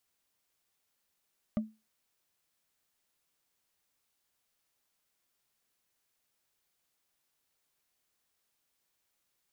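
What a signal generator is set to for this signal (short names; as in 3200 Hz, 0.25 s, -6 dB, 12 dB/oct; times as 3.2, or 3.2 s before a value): wood hit, lowest mode 218 Hz, decay 0.26 s, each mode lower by 8 dB, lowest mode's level -24 dB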